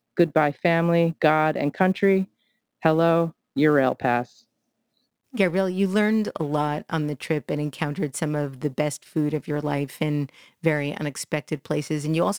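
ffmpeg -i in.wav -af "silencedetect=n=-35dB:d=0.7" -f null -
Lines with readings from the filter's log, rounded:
silence_start: 4.25
silence_end: 5.34 | silence_duration: 1.10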